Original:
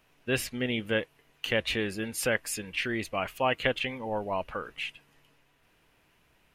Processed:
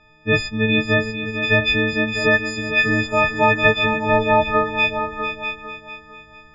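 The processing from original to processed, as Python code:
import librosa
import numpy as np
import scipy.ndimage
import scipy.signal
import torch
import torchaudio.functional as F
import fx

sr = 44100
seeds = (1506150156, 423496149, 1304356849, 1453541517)

p1 = fx.freq_snap(x, sr, grid_st=6)
p2 = fx.low_shelf(p1, sr, hz=160.0, db=11.5)
p3 = fx.rider(p2, sr, range_db=10, speed_s=0.5)
p4 = p2 + (p3 * librosa.db_to_amplitude(2.0))
p5 = scipy.ndimage.gaussian_filter1d(p4, 2.2, mode='constant')
p6 = p5 + 10.0 ** (-8.5 / 20.0) * np.pad(p5, (int(647 * sr / 1000.0), 0))[:len(p5)]
p7 = fx.dmg_buzz(p6, sr, base_hz=120.0, harmonics=12, level_db=-51.0, tilt_db=-1, odd_only=False, at=(3.01, 3.84), fade=0.02)
y = p7 + fx.echo_feedback(p7, sr, ms=450, feedback_pct=36, wet_db=-9.5, dry=0)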